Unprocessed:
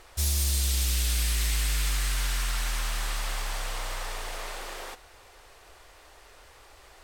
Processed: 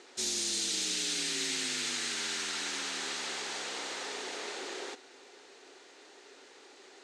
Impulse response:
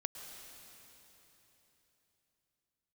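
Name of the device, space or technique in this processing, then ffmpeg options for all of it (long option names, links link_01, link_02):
television speaker: -af "highpass=frequency=200:width=0.5412,highpass=frequency=200:width=1.3066,equalizer=frequency=270:width_type=q:width=4:gain=9,equalizer=frequency=390:width_type=q:width=4:gain=9,equalizer=frequency=630:width_type=q:width=4:gain=-5,equalizer=frequency=1100:width_type=q:width=4:gain=-7,equalizer=frequency=4000:width_type=q:width=4:gain=4,equalizer=frequency=6600:width_type=q:width=4:gain=4,lowpass=frequency=7900:width=0.5412,lowpass=frequency=7900:width=1.3066,volume=-1.5dB"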